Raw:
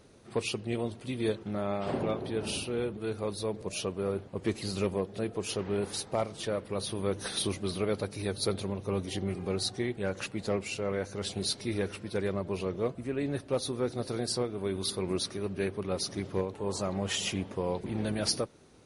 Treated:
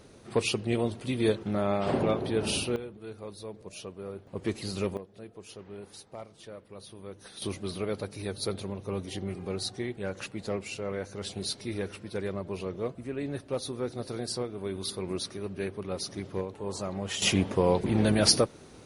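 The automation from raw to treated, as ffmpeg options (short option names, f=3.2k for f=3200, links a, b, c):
-af "asetnsamples=n=441:p=0,asendcmd='2.76 volume volume -8dB;4.27 volume volume -0.5dB;4.97 volume volume -12.5dB;7.42 volume volume -2dB;17.22 volume volume 8dB',volume=4.5dB"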